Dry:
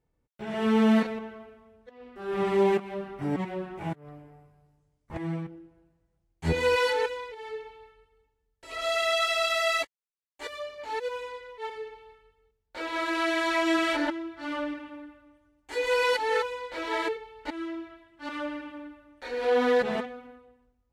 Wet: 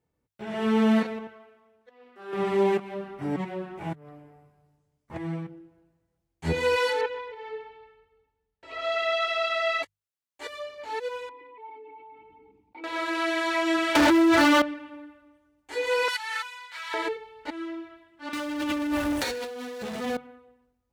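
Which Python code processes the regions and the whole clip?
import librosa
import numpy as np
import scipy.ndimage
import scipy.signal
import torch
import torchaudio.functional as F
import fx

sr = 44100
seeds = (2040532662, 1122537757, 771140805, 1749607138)

y = fx.chain(x, sr, fx.lowpass(hz=1000.0, slope=6),
    fx.tilt_eq(slope=4.5), at=(1.27, 2.33))
y = fx.chain(y, sr, fx.lowpass(hz=3400.0, slope=12),
    fx.peak_eq(hz=800.0, db=3.0, octaves=0.27),
    fx.echo_feedback(ms=130, feedback_pct=39, wet_db=-18.5), at=(7.01, 9.83))
y = fx.chain(y, sr, fx.envelope_sharpen(power=1.5),
    fx.vowel_filter(vowel='u'),
    fx.env_flatten(amount_pct=70), at=(11.29, 12.84))
y = fx.chain(y, sr, fx.leveller(passes=5),
    fx.env_flatten(amount_pct=100), at=(13.95, 14.62))
y = fx.chain(y, sr, fx.highpass(hz=1100.0, slope=24),
    fx.high_shelf(hz=6400.0, db=5.5), at=(16.08, 16.94))
y = fx.chain(y, sr, fx.bass_treble(bass_db=8, treble_db=14),
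    fx.power_curve(exponent=0.5),
    fx.over_compress(threshold_db=-31.0, ratio=-1.0), at=(18.33, 20.17))
y = scipy.signal.sosfilt(scipy.signal.butter(2, 69.0, 'highpass', fs=sr, output='sos'), y)
y = fx.hum_notches(y, sr, base_hz=50, count=3)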